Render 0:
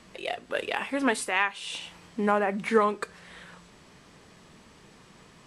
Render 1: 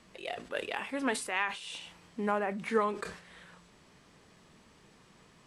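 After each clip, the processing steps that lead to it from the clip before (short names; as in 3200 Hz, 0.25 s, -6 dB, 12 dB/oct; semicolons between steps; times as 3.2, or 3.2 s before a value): sustainer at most 110 dB/s; gain -6.5 dB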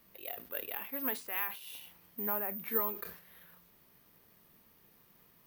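careless resampling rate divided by 3×, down filtered, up zero stuff; gain -8.5 dB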